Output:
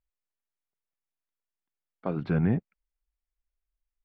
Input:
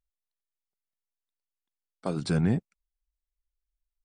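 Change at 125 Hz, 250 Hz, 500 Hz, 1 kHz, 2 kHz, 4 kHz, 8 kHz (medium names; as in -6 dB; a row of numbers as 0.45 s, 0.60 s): 0.0 dB, 0.0 dB, 0.0 dB, 0.0 dB, -0.5 dB, under -10 dB, under -30 dB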